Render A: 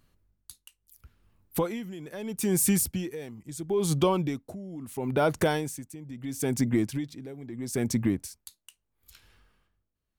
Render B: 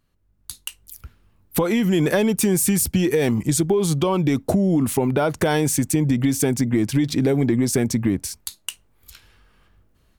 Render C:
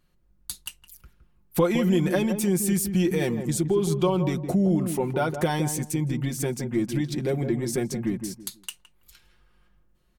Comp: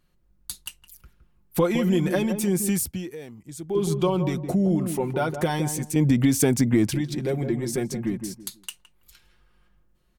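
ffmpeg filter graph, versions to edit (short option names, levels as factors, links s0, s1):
-filter_complex "[2:a]asplit=3[s0][s1][s2];[s0]atrim=end=2.692[s3];[0:a]atrim=start=2.688:end=3.752[s4];[s1]atrim=start=3.748:end=5.962[s5];[1:a]atrim=start=5.958:end=6.942[s6];[s2]atrim=start=6.938[s7];[s3][s4]acrossfade=d=0.004:c1=hsin:c2=hsin[s8];[s8][s5]acrossfade=d=0.004:c1=hsin:c2=hsin[s9];[s9][s6]acrossfade=d=0.004:c1=hsin:c2=hsin[s10];[s10][s7]acrossfade=d=0.004:c1=hsin:c2=hsin"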